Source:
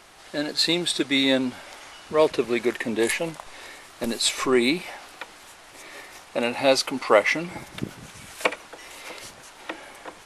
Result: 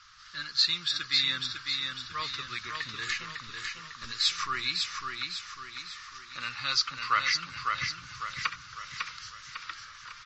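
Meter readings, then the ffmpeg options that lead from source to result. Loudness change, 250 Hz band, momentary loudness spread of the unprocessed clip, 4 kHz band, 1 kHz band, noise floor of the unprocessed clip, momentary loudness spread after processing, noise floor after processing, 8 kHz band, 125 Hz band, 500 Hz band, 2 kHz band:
-7.0 dB, -25.5 dB, 21 LU, -1.0 dB, -4.0 dB, -48 dBFS, 16 LU, -49 dBFS, -7.5 dB, -8.5 dB, -30.5 dB, -4.5 dB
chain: -filter_complex "[0:a]firequalizer=gain_entry='entry(120,0);entry(220,-19);entry(310,-24);entry(720,-29);entry(1200,7);entry(2200,-3);entry(4700,6);entry(8400,-16)':delay=0.05:min_phase=1,acrossover=split=550[a][b];[b]aexciter=amount=2:drive=1.3:freq=5.6k[c];[a][c]amix=inputs=2:normalize=0,aecho=1:1:551|1102|1653|2204|2755|3306:0.596|0.274|0.126|0.058|0.0267|0.0123,volume=-5.5dB" -ar 32000 -c:a libmp3lame -b:a 32k

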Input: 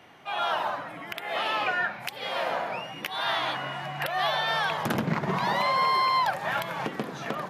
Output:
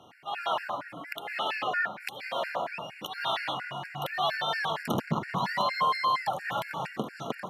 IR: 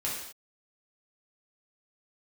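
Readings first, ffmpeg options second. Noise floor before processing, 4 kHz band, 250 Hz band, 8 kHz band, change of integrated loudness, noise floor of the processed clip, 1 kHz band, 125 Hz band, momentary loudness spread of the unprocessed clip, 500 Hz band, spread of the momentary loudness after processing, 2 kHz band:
-41 dBFS, -3.0 dB, -3.0 dB, -3.5 dB, -3.5 dB, -48 dBFS, -3.0 dB, -3.0 dB, 10 LU, -3.0 dB, 11 LU, -3.5 dB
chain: -af "afftfilt=real='re*gt(sin(2*PI*4.3*pts/sr)*(1-2*mod(floor(b*sr/1024/1400),2)),0)':imag='im*gt(sin(2*PI*4.3*pts/sr)*(1-2*mod(floor(b*sr/1024/1400),2)),0)':win_size=1024:overlap=0.75"

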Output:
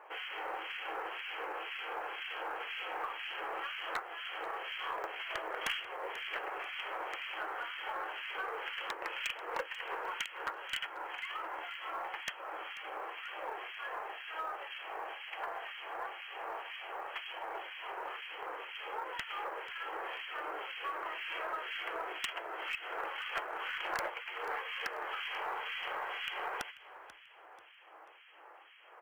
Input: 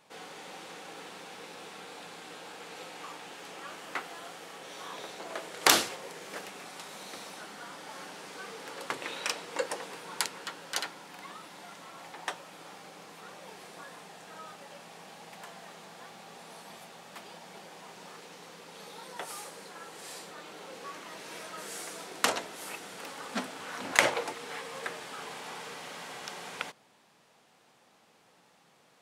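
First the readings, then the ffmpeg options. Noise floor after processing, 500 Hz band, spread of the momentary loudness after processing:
-56 dBFS, -3.5 dB, 5 LU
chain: -filter_complex "[0:a]equalizer=f=1.3k:w=0.43:g=11.5,acrossover=split=1800[a][b];[a]aeval=exprs='val(0)*(1-1/2+1/2*cos(2*PI*2*n/s))':c=same[c];[b]aeval=exprs='val(0)*(1-1/2-1/2*cos(2*PI*2*n/s))':c=same[d];[c][d]amix=inputs=2:normalize=0,afftfilt=real='re*between(b*sr/4096,310,3300)':imag='im*between(b*sr/4096,310,3300)':win_size=4096:overlap=0.75,aemphasis=mode=production:type=75kf,aresample=11025,aeval=exprs='(mod(0.75*val(0)+1,2)-1)/0.75':c=same,aresample=44100,acompressor=threshold=-38dB:ratio=4,aeval=exprs='0.0376*(abs(mod(val(0)/0.0376+3,4)-2)-1)':c=same,aeval=exprs='0.0398*(cos(1*acos(clip(val(0)/0.0398,-1,1)))-cos(1*PI/2))+0.00158*(cos(2*acos(clip(val(0)/0.0398,-1,1)))-cos(2*PI/2))+0.002*(cos(3*acos(clip(val(0)/0.0398,-1,1)))-cos(3*PI/2))':c=same,acrusher=bits=8:mode=log:mix=0:aa=0.000001,asplit=4[e][f][g][h];[f]adelay=488,afreqshift=32,volume=-16.5dB[i];[g]adelay=976,afreqshift=64,volume=-25.1dB[j];[h]adelay=1464,afreqshift=96,volume=-33.8dB[k];[e][i][j][k]amix=inputs=4:normalize=0,volume=3dB"

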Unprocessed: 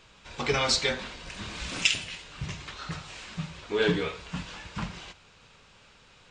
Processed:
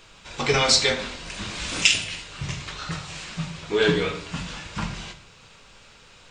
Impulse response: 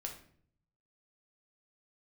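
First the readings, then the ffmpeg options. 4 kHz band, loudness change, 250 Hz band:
+6.5 dB, +6.0 dB, +4.5 dB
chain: -filter_complex "[0:a]bandreject=f=60:t=h:w=6,bandreject=f=120:t=h:w=6,bandreject=f=180:t=h:w=6,asplit=2[a][b];[1:a]atrim=start_sample=2205,highshelf=f=5.7k:g=10.5[c];[b][c]afir=irnorm=-1:irlink=0,volume=3.5dB[d];[a][d]amix=inputs=2:normalize=0,volume=-1.5dB"

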